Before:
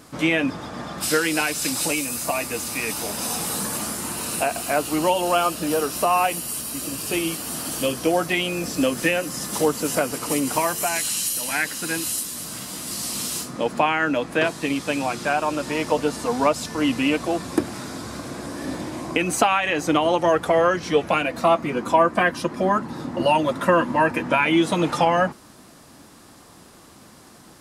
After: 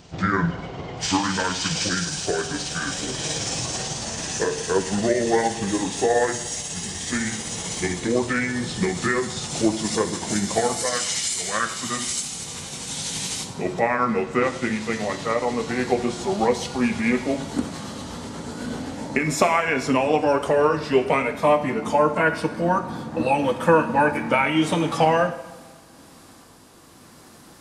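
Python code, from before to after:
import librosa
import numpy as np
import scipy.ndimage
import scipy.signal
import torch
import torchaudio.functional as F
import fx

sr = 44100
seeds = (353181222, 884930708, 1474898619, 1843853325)

y = fx.pitch_glide(x, sr, semitones=-9.0, runs='ending unshifted')
y = fx.rev_double_slope(y, sr, seeds[0], early_s=0.84, late_s=2.9, knee_db=-19, drr_db=7.5)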